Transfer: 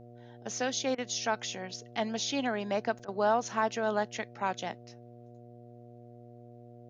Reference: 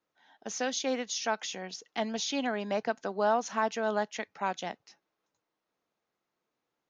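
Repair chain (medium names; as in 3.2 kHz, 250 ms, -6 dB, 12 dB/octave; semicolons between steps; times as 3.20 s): de-hum 119.7 Hz, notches 6; interpolate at 2.99 s, 3.6 ms; interpolate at 0.95/3.05 s, 30 ms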